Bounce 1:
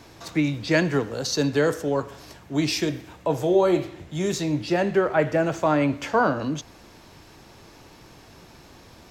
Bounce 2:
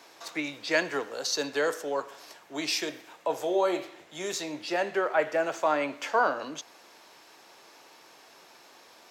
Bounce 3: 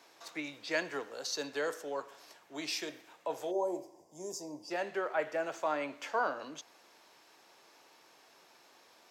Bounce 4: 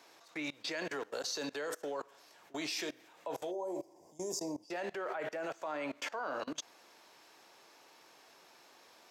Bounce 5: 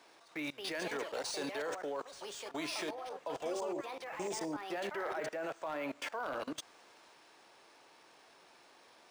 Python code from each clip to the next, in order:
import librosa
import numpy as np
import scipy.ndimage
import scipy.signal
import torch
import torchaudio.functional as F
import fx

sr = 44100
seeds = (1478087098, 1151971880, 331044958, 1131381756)

y1 = scipy.signal.sosfilt(scipy.signal.butter(2, 530.0, 'highpass', fs=sr, output='sos'), x)
y1 = F.gain(torch.from_numpy(y1), -2.0).numpy()
y2 = fx.spec_box(y1, sr, start_s=3.51, length_s=1.2, low_hz=1100.0, high_hz=4600.0, gain_db=-23)
y2 = F.gain(torch.from_numpy(y2), -7.5).numpy()
y3 = fx.level_steps(y2, sr, step_db=23)
y3 = F.gain(torch.from_numpy(y3), 8.0).numpy()
y4 = 10.0 ** (-30.5 / 20.0) * (np.abs((y3 / 10.0 ** (-30.5 / 20.0) + 3.0) % 4.0 - 2.0) - 1.0)
y4 = fx.echo_pitch(y4, sr, ms=313, semitones=5, count=2, db_per_echo=-6.0)
y4 = np.interp(np.arange(len(y4)), np.arange(len(y4))[::3], y4[::3])